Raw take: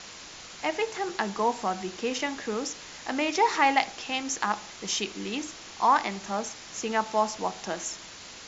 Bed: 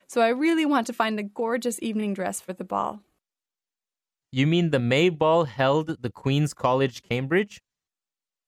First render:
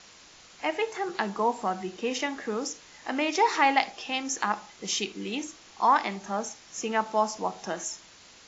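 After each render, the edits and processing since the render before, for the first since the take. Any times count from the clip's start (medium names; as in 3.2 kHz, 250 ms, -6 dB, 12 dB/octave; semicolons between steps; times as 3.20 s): noise print and reduce 8 dB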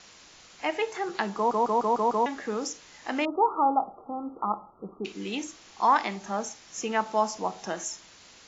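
1.36 s: stutter in place 0.15 s, 6 plays; 3.25–5.05 s: brick-wall FIR low-pass 1.4 kHz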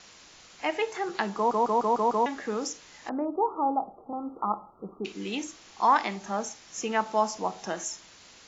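3.09–4.13 s: Bessel low-pass 770 Hz, order 8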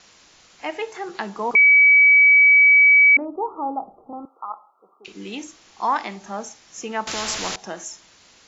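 1.55–3.17 s: bleep 2.28 kHz -9 dBFS; 4.25–5.08 s: high-pass 980 Hz; 7.07–7.56 s: spectrum-flattening compressor 4:1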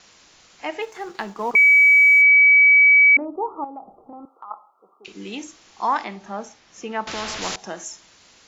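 0.82–2.22 s: companding laws mixed up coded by A; 3.64–4.51 s: compression 2.5:1, threshold -37 dBFS; 6.04–7.42 s: distance through air 110 m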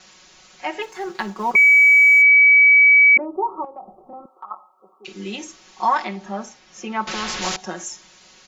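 comb 5.4 ms, depth 97%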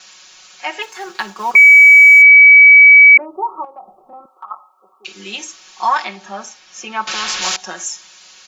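tilt shelf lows -8 dB, about 640 Hz; band-stop 2 kHz, Q 15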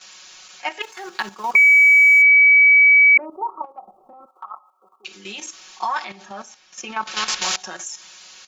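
level held to a coarse grid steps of 11 dB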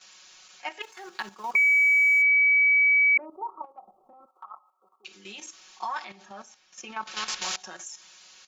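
trim -8.5 dB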